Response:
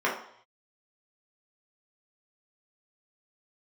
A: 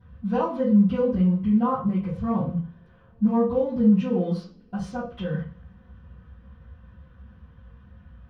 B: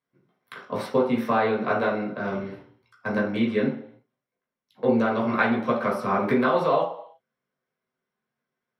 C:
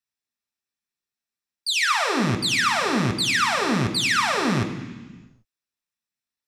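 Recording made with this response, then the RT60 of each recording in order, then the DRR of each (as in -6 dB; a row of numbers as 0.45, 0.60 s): B; not exponential, 0.65 s, 1.3 s; -15.5, -5.5, 3.5 dB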